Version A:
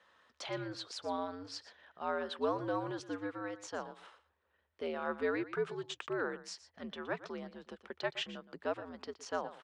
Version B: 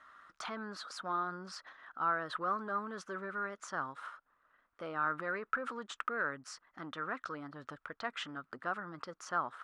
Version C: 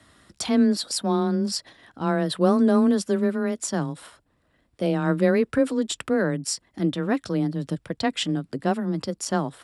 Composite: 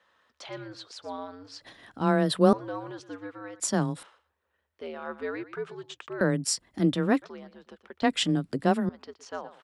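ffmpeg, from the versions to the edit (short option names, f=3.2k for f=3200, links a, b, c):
-filter_complex "[2:a]asplit=4[a][b][c][d];[0:a]asplit=5[e][f][g][h][i];[e]atrim=end=1.612[j];[a]atrim=start=1.608:end=2.532[k];[f]atrim=start=2.528:end=3.602[l];[b]atrim=start=3.598:end=4.032[m];[g]atrim=start=4.028:end=6.212[n];[c]atrim=start=6.208:end=7.222[o];[h]atrim=start=7.218:end=8.022[p];[d]atrim=start=8.018:end=8.892[q];[i]atrim=start=8.888[r];[j][k]acrossfade=d=0.004:c1=hsin:c2=hsin[s];[s][l]acrossfade=d=0.004:c1=hsin:c2=hsin[t];[t][m]acrossfade=d=0.004:c1=hsin:c2=hsin[u];[u][n]acrossfade=d=0.004:c1=hsin:c2=hsin[v];[v][o]acrossfade=d=0.004:c1=hsin:c2=hsin[w];[w][p]acrossfade=d=0.004:c1=hsin:c2=hsin[x];[x][q]acrossfade=d=0.004:c1=hsin:c2=hsin[y];[y][r]acrossfade=d=0.004:c1=hsin:c2=hsin"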